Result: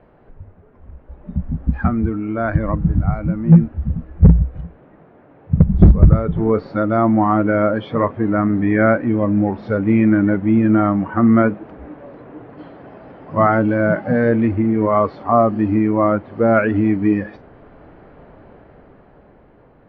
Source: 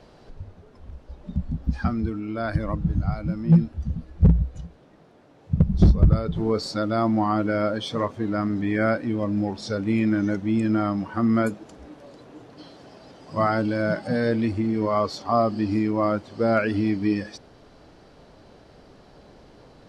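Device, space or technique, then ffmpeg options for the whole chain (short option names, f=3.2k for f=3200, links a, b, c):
action camera in a waterproof case: -af "lowpass=f=2.2k:w=0.5412,lowpass=f=2.2k:w=1.3066,dynaudnorm=f=140:g=21:m=11.5dB" -ar 16000 -c:a aac -b:a 48k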